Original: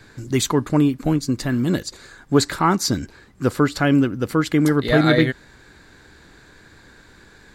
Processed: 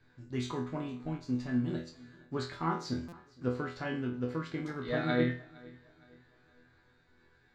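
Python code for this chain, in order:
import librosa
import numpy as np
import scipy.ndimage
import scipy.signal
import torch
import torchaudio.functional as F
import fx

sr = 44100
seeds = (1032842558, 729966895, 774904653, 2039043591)

p1 = fx.high_shelf(x, sr, hz=11000.0, db=8.5)
p2 = fx.resonator_bank(p1, sr, root=40, chord='fifth', decay_s=0.42)
p3 = np.sign(p2) * np.maximum(np.abs(p2) - 10.0 ** (-44.0 / 20.0), 0.0)
p4 = p2 + (p3 * librosa.db_to_amplitude(-6.5))
p5 = fx.air_absorb(p4, sr, metres=170.0)
p6 = p5 + fx.echo_feedback(p5, sr, ms=463, feedback_pct=39, wet_db=-23.0, dry=0)
p7 = fx.buffer_glitch(p6, sr, at_s=(3.08,), block=256, repeats=7)
y = p7 * librosa.db_to_amplitude(-4.5)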